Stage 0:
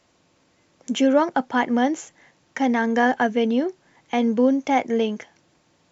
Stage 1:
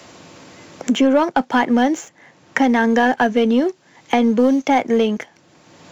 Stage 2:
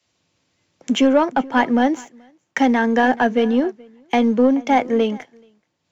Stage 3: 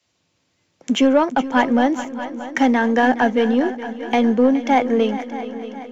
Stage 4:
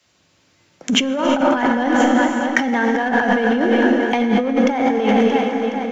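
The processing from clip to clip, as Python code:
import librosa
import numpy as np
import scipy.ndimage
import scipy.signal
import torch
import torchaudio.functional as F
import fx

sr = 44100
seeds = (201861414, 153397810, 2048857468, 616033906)

y1 = scipy.signal.sosfilt(scipy.signal.butter(2, 91.0, 'highpass', fs=sr, output='sos'), x)
y1 = fx.leveller(y1, sr, passes=1)
y1 = fx.band_squash(y1, sr, depth_pct=70)
y1 = y1 * 10.0 ** (1.5 / 20.0)
y2 = fx.high_shelf(y1, sr, hz=5600.0, db=-7.5)
y2 = y2 + 10.0 ** (-18.0 / 20.0) * np.pad(y2, (int(430 * sr / 1000.0), 0))[:len(y2)]
y2 = fx.band_widen(y2, sr, depth_pct=100)
y2 = y2 * 10.0 ** (-1.0 / 20.0)
y3 = fx.echo_heads(y2, sr, ms=209, heads='second and third', feedback_pct=54, wet_db=-15.0)
y4 = fx.peak_eq(y3, sr, hz=1500.0, db=3.5, octaves=0.69)
y4 = fx.rev_gated(y4, sr, seeds[0], gate_ms=400, shape='flat', drr_db=3.0)
y4 = fx.over_compress(y4, sr, threshold_db=-20.0, ratio=-1.0)
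y4 = y4 * 10.0 ** (3.5 / 20.0)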